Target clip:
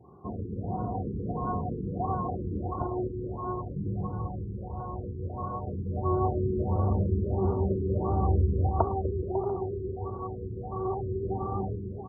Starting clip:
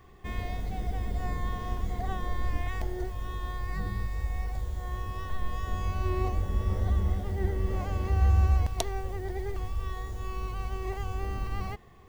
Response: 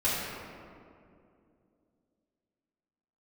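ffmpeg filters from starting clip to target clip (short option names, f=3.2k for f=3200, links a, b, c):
-filter_complex "[0:a]highpass=f=98:w=0.5412,highpass=f=98:w=1.3066,asplit=2[a][b];[b]adynamicsmooth=sensitivity=3:basefreq=750,volume=0dB[c];[a][c]amix=inputs=2:normalize=0,equalizer=f=950:t=o:w=0.24:g=10.5,asplit=2[d][e];[e]aecho=0:1:250|425|547.5|633.2|693.3:0.631|0.398|0.251|0.158|0.1[f];[d][f]amix=inputs=2:normalize=0,afftfilt=real='re*lt(b*sr/1024,460*pow(1500/460,0.5+0.5*sin(2*PI*1.5*pts/sr)))':imag='im*lt(b*sr/1024,460*pow(1500/460,0.5+0.5*sin(2*PI*1.5*pts/sr)))':win_size=1024:overlap=0.75"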